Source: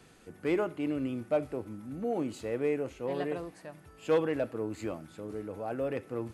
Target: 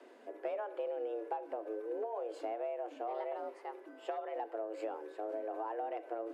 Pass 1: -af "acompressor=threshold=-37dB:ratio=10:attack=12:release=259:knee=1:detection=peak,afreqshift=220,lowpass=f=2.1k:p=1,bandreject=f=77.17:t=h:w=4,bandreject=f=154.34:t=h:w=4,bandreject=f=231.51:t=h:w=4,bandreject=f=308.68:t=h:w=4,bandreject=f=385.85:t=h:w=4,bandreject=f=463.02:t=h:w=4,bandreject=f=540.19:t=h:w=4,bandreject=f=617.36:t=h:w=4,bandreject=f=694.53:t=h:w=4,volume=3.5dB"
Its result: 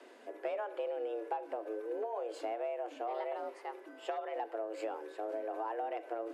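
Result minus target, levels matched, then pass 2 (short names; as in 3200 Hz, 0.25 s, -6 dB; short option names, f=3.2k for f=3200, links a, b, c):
2000 Hz band +3.0 dB
-af "acompressor=threshold=-37dB:ratio=10:attack=12:release=259:knee=1:detection=peak,afreqshift=220,lowpass=f=990:p=1,bandreject=f=77.17:t=h:w=4,bandreject=f=154.34:t=h:w=4,bandreject=f=231.51:t=h:w=4,bandreject=f=308.68:t=h:w=4,bandreject=f=385.85:t=h:w=4,bandreject=f=463.02:t=h:w=4,bandreject=f=540.19:t=h:w=4,bandreject=f=617.36:t=h:w=4,bandreject=f=694.53:t=h:w=4,volume=3.5dB"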